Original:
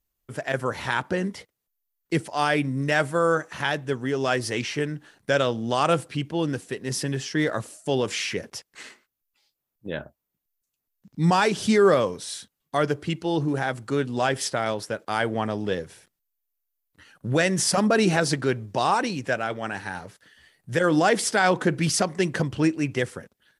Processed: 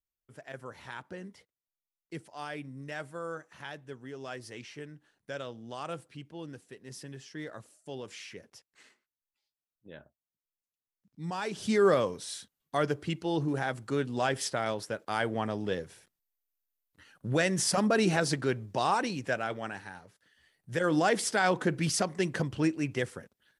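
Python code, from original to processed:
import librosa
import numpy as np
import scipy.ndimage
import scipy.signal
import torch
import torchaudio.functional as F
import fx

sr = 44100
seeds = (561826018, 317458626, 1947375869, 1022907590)

y = fx.gain(x, sr, db=fx.line((11.28, -17.0), (11.83, -5.5), (19.59, -5.5), (20.03, -14.5), (20.94, -6.0)))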